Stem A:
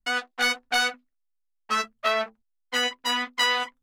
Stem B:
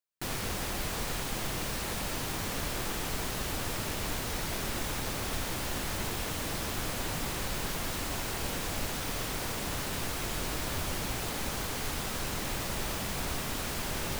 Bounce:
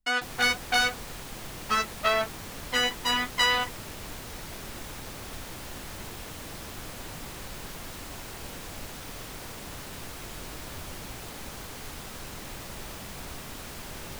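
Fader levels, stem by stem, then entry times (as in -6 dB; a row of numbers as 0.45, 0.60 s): -0.5, -6.0 dB; 0.00, 0.00 s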